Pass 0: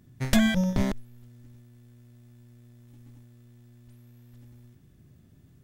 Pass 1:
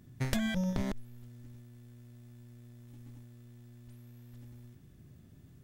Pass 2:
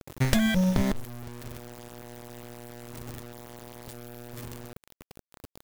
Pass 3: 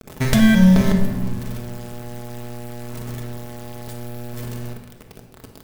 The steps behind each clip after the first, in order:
downward compressor 6 to 1, threshold −29 dBFS, peak gain reduction 12.5 dB
bit-depth reduction 8 bits, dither none; level +8.5 dB
convolution reverb RT60 1.5 s, pre-delay 5 ms, DRR 1.5 dB; level +4.5 dB

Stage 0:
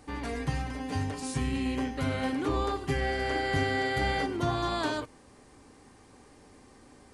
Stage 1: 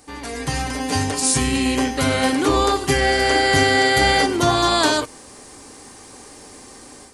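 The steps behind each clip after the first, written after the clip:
bass and treble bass −6 dB, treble +10 dB
automatic gain control gain up to 9.5 dB
level +3.5 dB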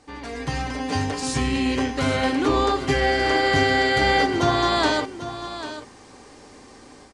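high-frequency loss of the air 100 metres
single-tap delay 794 ms −12 dB
level −2.5 dB

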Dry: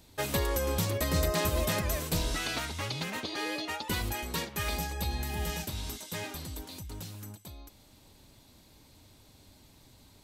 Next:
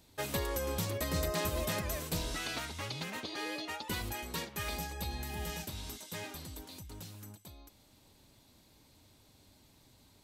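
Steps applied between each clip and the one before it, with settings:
low-shelf EQ 61 Hz −5 dB
level −4.5 dB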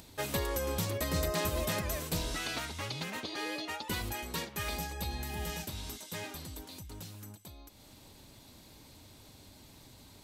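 upward compression, threshold −48 dBFS
level +1.5 dB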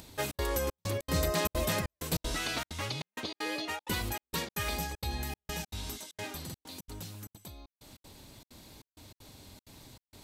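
gate pattern "xxxx.xxxx..xx.x" 194 BPM −60 dB
buffer that repeats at 0:06.45/0:09.45, samples 2,048, times 1
level +2.5 dB

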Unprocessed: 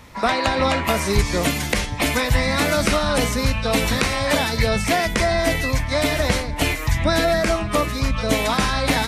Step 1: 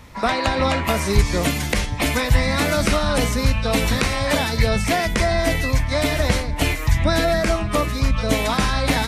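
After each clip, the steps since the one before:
low-shelf EQ 140 Hz +5 dB
level −1 dB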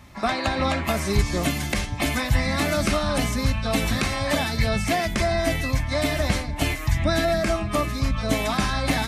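notch comb filter 480 Hz
level −2.5 dB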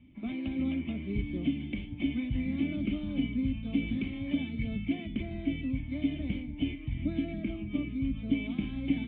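formant resonators in series i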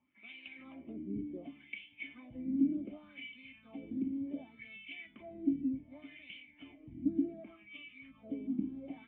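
LFO wah 0.67 Hz 270–2,800 Hz, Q 4.1
level +2.5 dB

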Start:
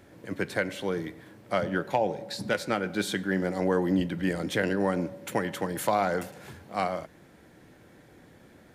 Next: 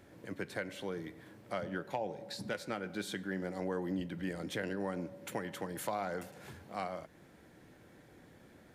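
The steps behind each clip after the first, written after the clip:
downward compressor 1.5 to 1, threshold −40 dBFS, peak gain reduction 7.5 dB
level −4.5 dB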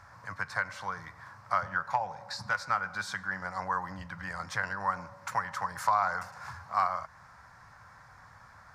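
drawn EQ curve 110 Hz 0 dB, 350 Hz −26 dB, 1,100 Hz +14 dB, 3,200 Hz −11 dB, 5,100 Hz +4 dB, 11,000 Hz −11 dB
level +6 dB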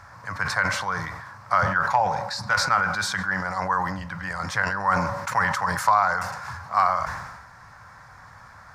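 level that may fall only so fast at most 46 dB per second
level +7 dB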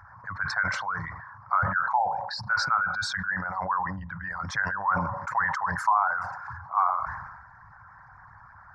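spectral envelope exaggerated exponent 2
level −3.5 dB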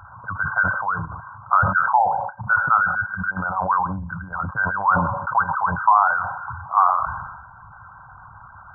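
linear-phase brick-wall low-pass 1,600 Hz
level +7.5 dB

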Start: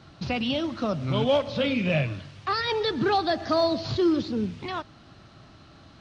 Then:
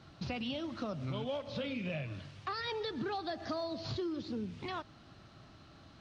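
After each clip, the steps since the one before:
downward compressor, threshold −29 dBFS, peak gain reduction 10.5 dB
level −6 dB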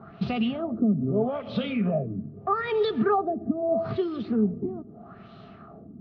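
hollow resonant body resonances 210/410/670/1,200 Hz, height 17 dB, ringing for 45 ms
auto-filter low-pass sine 0.79 Hz 270–3,600 Hz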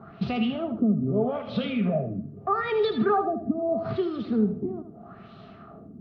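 feedback echo with a high-pass in the loop 78 ms, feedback 28%, level −8 dB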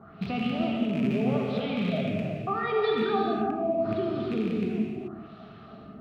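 loose part that buzzes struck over −27 dBFS, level −25 dBFS
brickwall limiter −18.5 dBFS, peak gain reduction 6 dB
reverb whose tail is shaped and stops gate 460 ms flat, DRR −2 dB
level −4 dB

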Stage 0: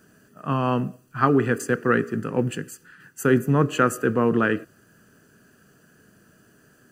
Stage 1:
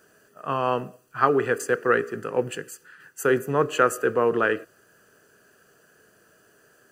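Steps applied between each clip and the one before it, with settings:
low shelf with overshoot 330 Hz −9 dB, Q 1.5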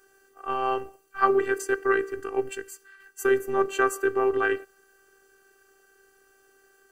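phases set to zero 391 Hz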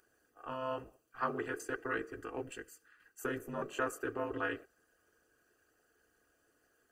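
notch comb filter 390 Hz
level −2 dB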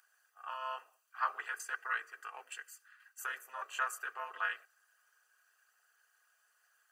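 high-pass filter 900 Hz 24 dB per octave
level +3 dB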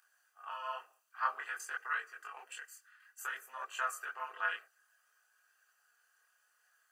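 multi-voice chorus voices 2, 0.55 Hz, delay 24 ms, depth 4.5 ms
level +2.5 dB

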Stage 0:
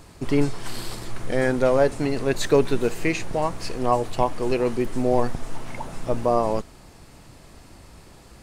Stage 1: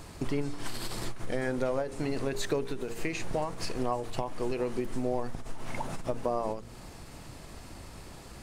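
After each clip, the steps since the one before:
hum removal 57.95 Hz, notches 9
downward compressor 5 to 1, threshold −29 dBFS, peak gain reduction 14.5 dB
every ending faded ahead of time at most 110 dB per second
level +1.5 dB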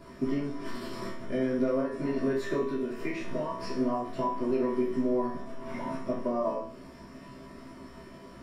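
Butterworth band-reject 810 Hz, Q 4.5
tuned comb filter 66 Hz, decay 0.52 s, harmonics all, mix 90%
convolution reverb RT60 0.40 s, pre-delay 3 ms, DRR −8 dB
level −5.5 dB

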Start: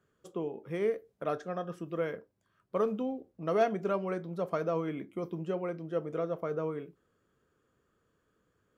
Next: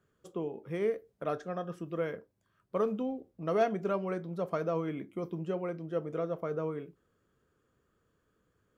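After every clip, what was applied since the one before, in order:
low-shelf EQ 130 Hz +4.5 dB
level −1 dB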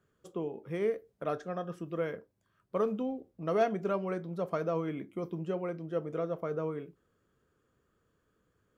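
no processing that can be heard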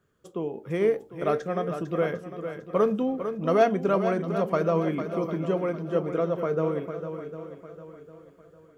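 automatic gain control gain up to 4.5 dB
feedback echo with a long and a short gap by turns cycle 752 ms, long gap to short 1.5 to 1, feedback 33%, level −9 dB
level +3 dB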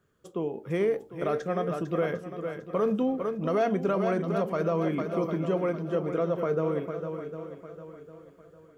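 brickwall limiter −17.5 dBFS, peak gain reduction 7 dB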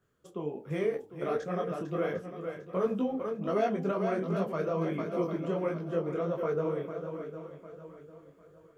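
micro pitch shift up and down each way 48 cents

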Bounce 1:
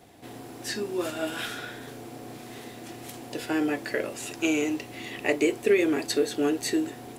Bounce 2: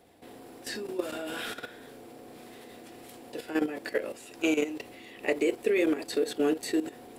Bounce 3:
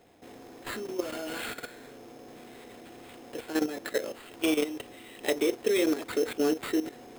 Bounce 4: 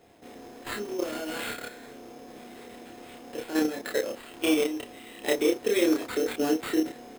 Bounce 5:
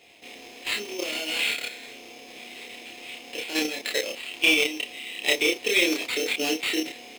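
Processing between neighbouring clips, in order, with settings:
thirty-one-band graphic EQ 125 Hz −10 dB, 500 Hz +6 dB, 6,300 Hz −5 dB; output level in coarse steps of 12 dB
sample-rate reduction 5,800 Hz, jitter 0%
double-tracking delay 29 ms −2 dB
high shelf with overshoot 1,900 Hz +8 dB, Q 3; mid-hump overdrive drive 10 dB, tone 5,100 Hz, clips at −4 dBFS; level −3 dB

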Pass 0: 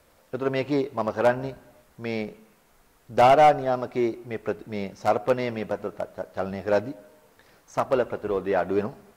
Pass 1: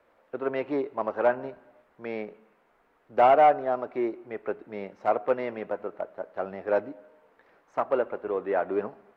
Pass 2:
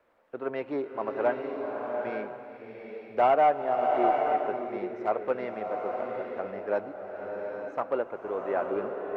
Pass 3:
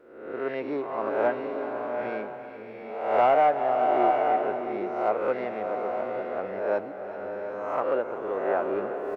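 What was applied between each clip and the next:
three-way crossover with the lows and the highs turned down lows −15 dB, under 250 Hz, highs −22 dB, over 2,600 Hz; level −2 dB
slow-attack reverb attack 850 ms, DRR 2.5 dB; level −3.5 dB
peak hold with a rise ahead of every peak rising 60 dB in 0.84 s; single-tap delay 380 ms −14 dB

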